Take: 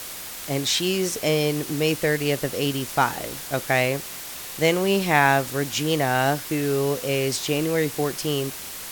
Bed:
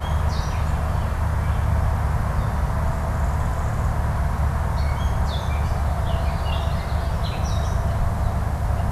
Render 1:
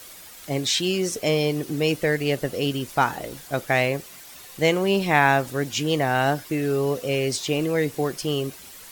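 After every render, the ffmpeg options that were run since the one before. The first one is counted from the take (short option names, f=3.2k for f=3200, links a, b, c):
-af "afftdn=nr=10:nf=-36"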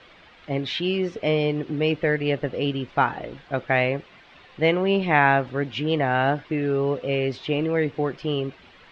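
-af "lowpass=f=3.2k:w=0.5412,lowpass=f=3.2k:w=1.3066"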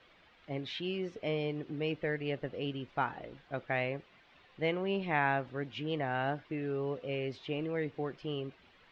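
-af "volume=-12dB"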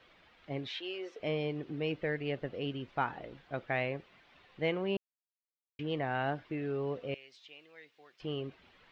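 -filter_complex "[0:a]asettb=1/sr,asplit=3[a][b][c];[a]atrim=end=0.684[d];[b]atrim=start=0.68:end=1.2,asetpts=PTS-STARTPTS,afade=t=in:d=0.004:c=qsin,afade=t=out:st=0.516:d=0.004:c=qsin,highpass=f=390:w=0.5412,highpass=f=390:w=1.3066[e];[c]atrim=start=1.196[f];[d][e]acrossfade=d=0.004:c1=hsin:c2=qsin[g];[g][f]acrossfade=d=0.004:c1=qsin:c2=hsin,asettb=1/sr,asplit=3[h][i][j];[h]atrim=end=7.144[k];[i]atrim=start=7.14:end=8.2,asetpts=PTS-STARTPTS,afade=t=in:d=0.004:c=qsin,afade=t=out:st=1.056:d=0.004:c=qsin,aderivative[l];[j]atrim=start=8.196[m];[k][l]acrossfade=d=0.004:c1=hsin:c2=qsin[n];[n][m]acrossfade=d=0.004:c1=qsin:c2=hsin,asplit=3[o][p][q];[o]atrim=end=4.97,asetpts=PTS-STARTPTS,afade=t=out:st=4.966:d=0.004:c=hsin[r];[p]atrim=start=4.97:end=5.79,asetpts=PTS-STARTPTS,volume=0[s];[q]atrim=start=5.79,asetpts=PTS-STARTPTS,afade=t=in:d=0.004:c=hsin[t];[r][s][t]concat=n=3:v=0:a=1"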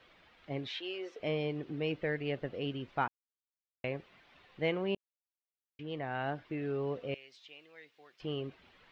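-filter_complex "[0:a]asplit=4[a][b][c][d];[a]atrim=end=3.08,asetpts=PTS-STARTPTS,afade=t=out:st=3.076:d=0.004:c=hsin[e];[b]atrim=start=3.08:end=3.84,asetpts=PTS-STARTPTS,volume=0[f];[c]atrim=start=3.84:end=4.95,asetpts=PTS-STARTPTS,afade=t=in:d=0.004:c=hsin,afade=t=out:st=1.106:d=0.004:c=hsin[g];[d]atrim=start=4.95,asetpts=PTS-STARTPTS,afade=t=in:d=1.74[h];[e][f][g][h]concat=n=4:v=0:a=1"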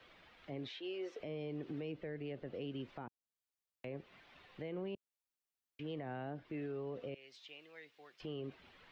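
-filter_complex "[0:a]acrossover=split=150|550[a][b][c];[a]acompressor=threshold=-55dB:ratio=4[d];[b]acompressor=threshold=-37dB:ratio=4[e];[c]acompressor=threshold=-49dB:ratio=4[f];[d][e][f]amix=inputs=3:normalize=0,alimiter=level_in=11dB:limit=-24dB:level=0:latency=1:release=32,volume=-11dB"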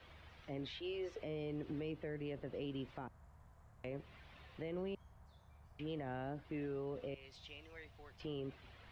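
-filter_complex "[1:a]volume=-40dB[a];[0:a][a]amix=inputs=2:normalize=0"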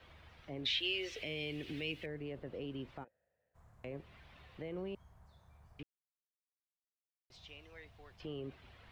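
-filter_complex "[0:a]asettb=1/sr,asplit=3[a][b][c];[a]atrim=end=0.654[d];[b]atrim=start=0.65:end=2.06,asetpts=PTS-STARTPTS,afade=t=in:d=0.004:c=qsin,afade=t=out:st=1.406:d=0.004:c=qsin,highshelf=f=1.7k:t=q:w=1.5:g=13[e];[c]atrim=start=2.056[f];[d][e]acrossfade=d=0.004:c1=hsin:c2=qsin[g];[g][f]acrossfade=d=0.004:c1=qsin:c2=hsin,asplit=3[h][i][j];[h]afade=t=out:st=3.03:d=0.02[k];[i]asplit=3[l][m][n];[l]bandpass=f=530:t=q:w=8,volume=0dB[o];[m]bandpass=f=1.84k:t=q:w=8,volume=-6dB[p];[n]bandpass=f=2.48k:t=q:w=8,volume=-9dB[q];[o][p][q]amix=inputs=3:normalize=0,afade=t=in:st=3.03:d=0.02,afade=t=out:st=3.54:d=0.02[r];[j]afade=t=in:st=3.54:d=0.02[s];[k][r][s]amix=inputs=3:normalize=0,asplit=3[t][u][v];[t]atrim=end=5.83,asetpts=PTS-STARTPTS,afade=t=out:st=5.826:d=0.004:c=hsin[w];[u]atrim=start=5.83:end=7.3,asetpts=PTS-STARTPTS,volume=0[x];[v]atrim=start=7.3,asetpts=PTS-STARTPTS,afade=t=in:d=0.004:c=hsin[y];[w][x][y]concat=n=3:v=0:a=1"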